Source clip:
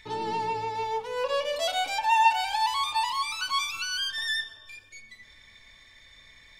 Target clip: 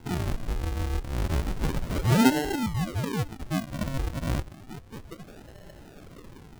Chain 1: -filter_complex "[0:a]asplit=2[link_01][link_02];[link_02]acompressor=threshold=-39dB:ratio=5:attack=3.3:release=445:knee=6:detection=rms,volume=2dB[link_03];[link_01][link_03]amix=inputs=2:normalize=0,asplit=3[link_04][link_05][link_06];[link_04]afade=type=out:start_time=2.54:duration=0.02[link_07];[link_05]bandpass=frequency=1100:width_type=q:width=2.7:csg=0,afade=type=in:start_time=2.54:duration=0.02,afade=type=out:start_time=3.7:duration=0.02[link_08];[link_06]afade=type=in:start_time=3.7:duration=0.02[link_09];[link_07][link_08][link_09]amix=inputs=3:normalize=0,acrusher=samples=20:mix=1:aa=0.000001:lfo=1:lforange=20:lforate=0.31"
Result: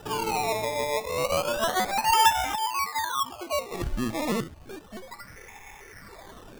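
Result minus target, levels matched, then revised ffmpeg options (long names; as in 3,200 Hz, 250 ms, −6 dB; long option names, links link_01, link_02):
sample-and-hold swept by an LFO: distortion −21 dB
-filter_complex "[0:a]asplit=2[link_01][link_02];[link_02]acompressor=threshold=-39dB:ratio=5:attack=3.3:release=445:knee=6:detection=rms,volume=2dB[link_03];[link_01][link_03]amix=inputs=2:normalize=0,asplit=3[link_04][link_05][link_06];[link_04]afade=type=out:start_time=2.54:duration=0.02[link_07];[link_05]bandpass=frequency=1100:width_type=q:width=2.7:csg=0,afade=type=in:start_time=2.54:duration=0.02,afade=type=out:start_time=3.7:duration=0.02[link_08];[link_06]afade=type=in:start_time=3.7:duration=0.02[link_09];[link_07][link_08][link_09]amix=inputs=3:normalize=0,acrusher=samples=73:mix=1:aa=0.000001:lfo=1:lforange=73:lforate=0.31"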